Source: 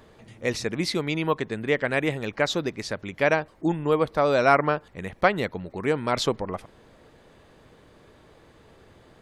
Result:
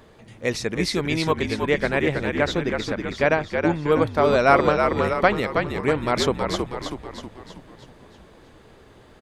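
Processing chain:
0:01.74–0:03.66: high-shelf EQ 4,900 Hz −9 dB
echo with shifted repeats 321 ms, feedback 52%, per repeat −56 Hz, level −5 dB
0:04.68–0:05.14: multiband upward and downward compressor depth 70%
level +2 dB

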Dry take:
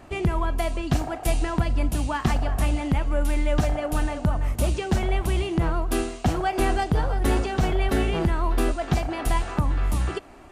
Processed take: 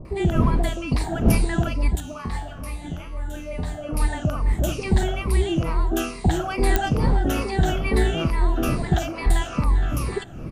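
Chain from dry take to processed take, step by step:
rippled gain that drifts along the octave scale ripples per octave 0.93, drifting −2.3 Hz, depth 13 dB
wind on the microphone 200 Hz −30 dBFS
0:01.95–0:03.89: tuned comb filter 86 Hz, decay 0.43 s, harmonics all, mix 80%
multiband delay without the direct sound lows, highs 50 ms, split 790 Hz
digital clicks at 0:06.76, −5 dBFS

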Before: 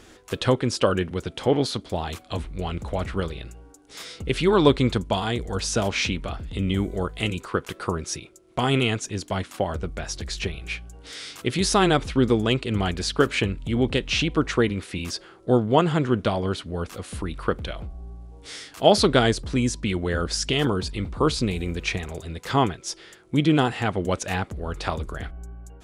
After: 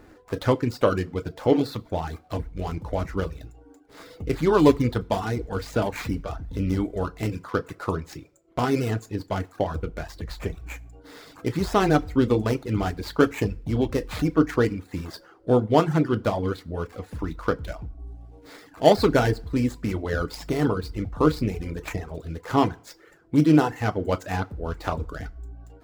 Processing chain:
running median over 15 samples
feedback delay network reverb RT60 0.51 s, low-frequency decay 0.9×, high-frequency decay 0.9×, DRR 6.5 dB
reverb reduction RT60 0.58 s

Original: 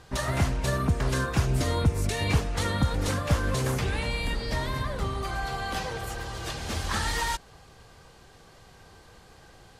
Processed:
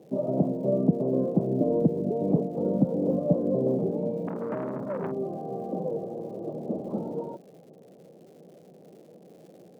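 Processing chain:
elliptic band-pass filter 170–610 Hz, stop band 50 dB
surface crackle 210 per second −58 dBFS
0:04.27–0:05.12: saturating transformer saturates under 750 Hz
level +8 dB

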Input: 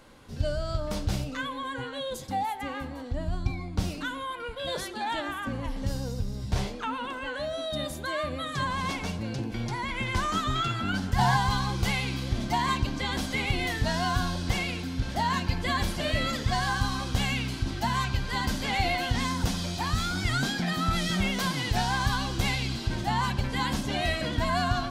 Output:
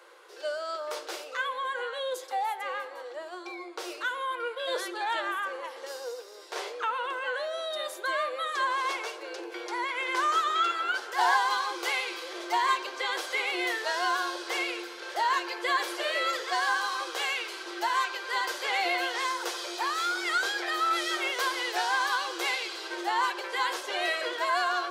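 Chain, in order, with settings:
Chebyshev high-pass with heavy ripple 340 Hz, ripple 6 dB
level +4.5 dB

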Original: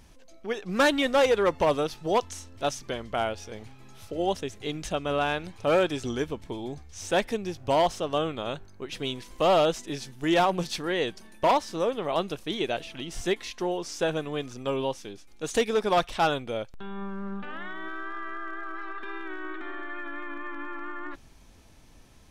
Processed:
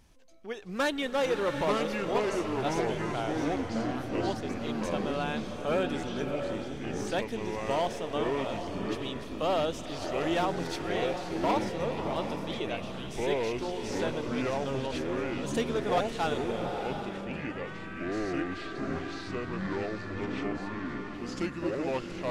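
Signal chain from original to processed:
delay with pitch and tempo change per echo 621 ms, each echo −5 semitones, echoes 3
slow-attack reverb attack 750 ms, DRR 6 dB
level −7 dB

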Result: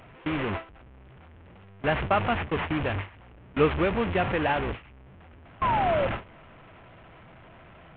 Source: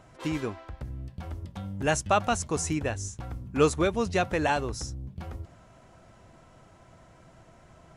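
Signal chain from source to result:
linear delta modulator 16 kbit/s, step −23 dBFS
sound drawn into the spectrogram fall, 0:05.61–0:06.07, 520–1,100 Hz −25 dBFS
noise gate with hold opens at −21 dBFS

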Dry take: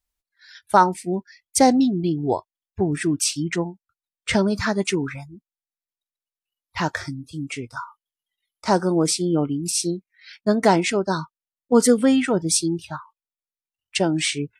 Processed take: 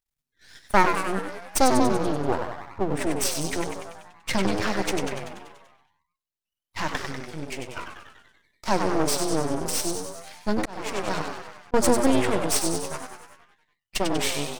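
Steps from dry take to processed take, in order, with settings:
mains-hum notches 60/120/180/240/300 Hz
echo with shifted repeats 96 ms, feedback 60%, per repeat +110 Hz, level −6.5 dB
half-wave rectification
0:10.51–0:11.74: volume swells 522 ms

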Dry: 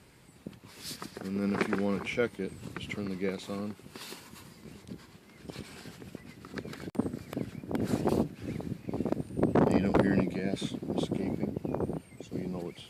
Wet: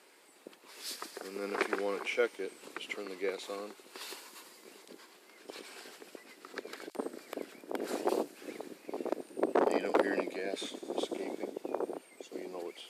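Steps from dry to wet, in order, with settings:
high-pass filter 350 Hz 24 dB per octave
delay with a high-pass on its return 92 ms, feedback 83%, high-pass 5,500 Hz, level −11.5 dB

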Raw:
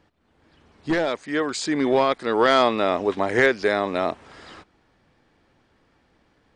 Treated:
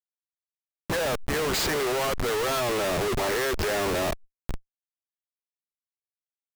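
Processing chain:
fade in at the beginning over 1.82 s
Chebyshev high-pass filter 380 Hz, order 6
comparator with hysteresis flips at −35 dBFS
background raised ahead of every attack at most 74 dB per second

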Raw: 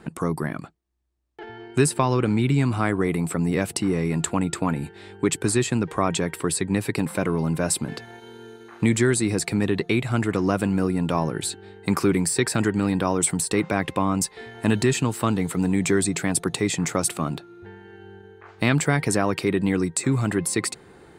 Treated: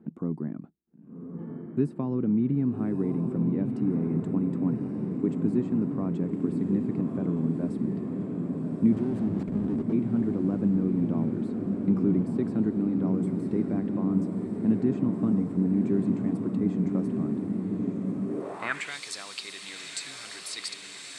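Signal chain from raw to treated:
0:08.92–0:09.93: comparator with hysteresis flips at −25.5 dBFS
feedback delay with all-pass diffusion 1,181 ms, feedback 77%, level −5 dB
band-pass filter sweep 230 Hz → 4,100 Hz, 0:18.26–0:18.96

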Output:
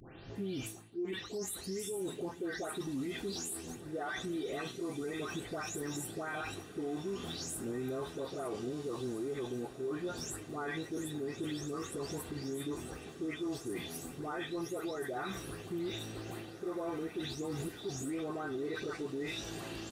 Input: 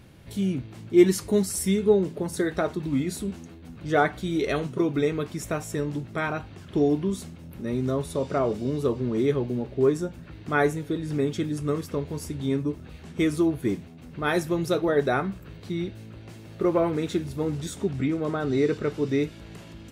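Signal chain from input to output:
every frequency bin delayed by itself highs late, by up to 356 ms
bass and treble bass −8 dB, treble +2 dB
notch filter 2,200 Hz, Q 12
comb filter 2.6 ms, depth 32%
reversed playback
downward compressor 16 to 1, threshold −35 dBFS, peak gain reduction 24.5 dB
reversed playback
brickwall limiter −35.5 dBFS, peak gain reduction 9 dB
on a send: feedback delay with all-pass diffusion 1,633 ms, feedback 67%, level −15 dB
on the sum: level +4.5 dB

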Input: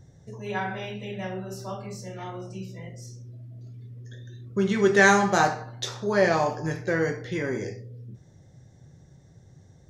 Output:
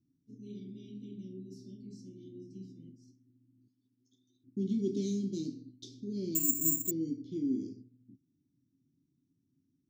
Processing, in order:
noise gate −40 dBFS, range −13 dB
elliptic band-stop filter 340–4,700 Hz, stop band 60 dB
0:03.68–0:04.44: spectral tilt +4.5 dB per octave
formant filter i
0:06.35–0:06.91: bad sample-rate conversion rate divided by 6×, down none, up zero stuff
level +7 dB

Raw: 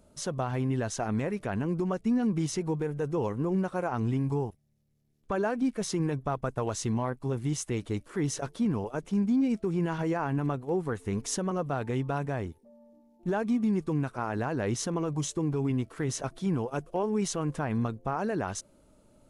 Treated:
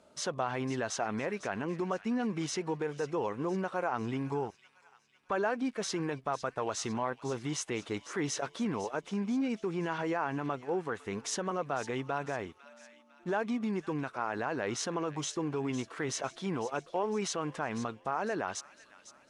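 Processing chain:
high-pass filter 810 Hz 6 dB per octave
high-shelf EQ 7,500 Hz −7 dB
on a send: delay with a high-pass on its return 503 ms, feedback 48%, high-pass 2,200 Hz, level −13 dB
on the sum: speech leveller 2 s
high-frequency loss of the air 54 metres
in parallel at −1.5 dB: brickwall limiter −31.5 dBFS, peak gain reduction 10.5 dB

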